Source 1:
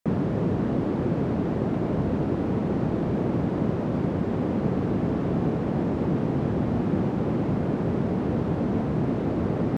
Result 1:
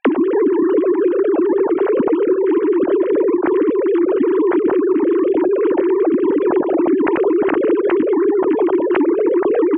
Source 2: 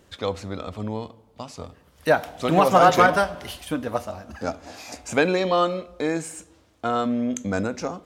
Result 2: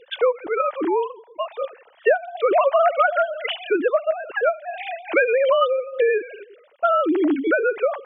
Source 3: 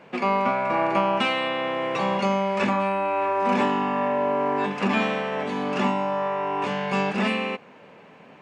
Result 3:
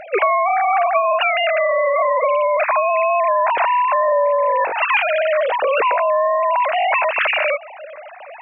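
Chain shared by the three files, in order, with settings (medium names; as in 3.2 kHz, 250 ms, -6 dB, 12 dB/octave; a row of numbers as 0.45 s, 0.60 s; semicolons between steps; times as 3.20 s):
formants replaced by sine waves; band-stop 1.2 kHz, Q 27; compression 6:1, threshold -30 dBFS; peak normalisation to -6 dBFS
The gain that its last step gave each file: +17.0 dB, +14.0 dB, +15.5 dB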